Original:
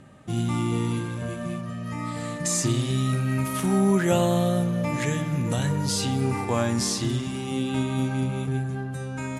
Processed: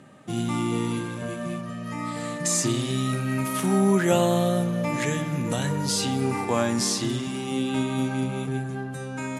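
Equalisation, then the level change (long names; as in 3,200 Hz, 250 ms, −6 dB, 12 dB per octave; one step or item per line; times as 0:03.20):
high-pass filter 160 Hz 12 dB per octave
+1.5 dB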